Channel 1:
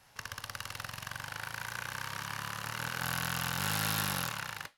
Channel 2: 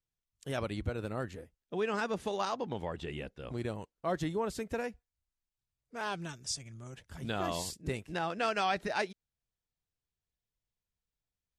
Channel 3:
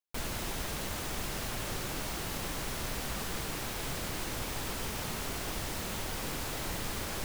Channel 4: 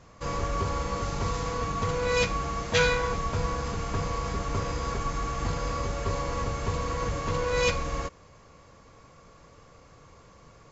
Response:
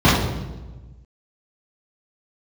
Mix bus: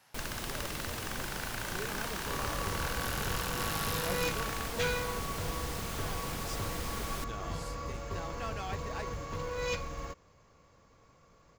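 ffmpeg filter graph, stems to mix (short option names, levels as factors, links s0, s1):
-filter_complex "[0:a]highpass=150,alimiter=limit=0.075:level=0:latency=1,volume=0.841[s0];[1:a]volume=0.299[s1];[2:a]volume=0.708[s2];[3:a]acontrast=83,adelay=2050,volume=0.158[s3];[s0][s1][s2][s3]amix=inputs=4:normalize=0,acrusher=bits=7:mode=log:mix=0:aa=0.000001"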